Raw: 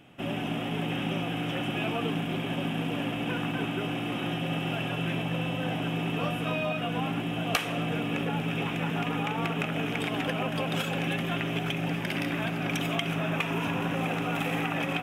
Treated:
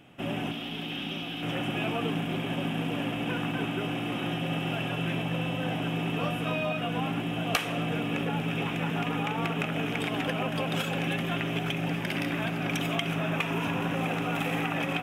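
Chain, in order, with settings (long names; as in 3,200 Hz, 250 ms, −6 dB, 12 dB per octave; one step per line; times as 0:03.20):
0:00.51–0:01.43: graphic EQ with 10 bands 125 Hz −12 dB, 500 Hz −8 dB, 1,000 Hz −5 dB, 2,000 Hz −5 dB, 4,000 Hz +9 dB, 8,000 Hz −7 dB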